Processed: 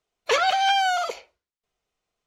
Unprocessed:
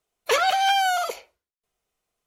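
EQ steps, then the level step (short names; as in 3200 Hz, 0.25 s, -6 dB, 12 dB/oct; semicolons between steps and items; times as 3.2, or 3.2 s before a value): air absorption 150 m; high shelf 5300 Hz +12 dB; high shelf 12000 Hz +8 dB; 0.0 dB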